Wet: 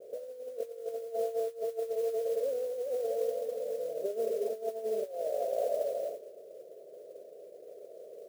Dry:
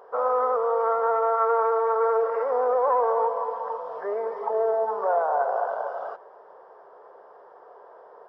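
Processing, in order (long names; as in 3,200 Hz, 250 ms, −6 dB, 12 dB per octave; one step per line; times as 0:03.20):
Butterworth low-pass 630 Hz 96 dB per octave
mains-hum notches 50/100/150/200/250/300/350/400/450 Hz
0:01.89–0:03.93: dynamic equaliser 440 Hz, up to −7 dB, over −36 dBFS, Q 0.93
compressor whose output falls as the input rises −33 dBFS, ratio −0.5
noise that follows the level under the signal 23 dB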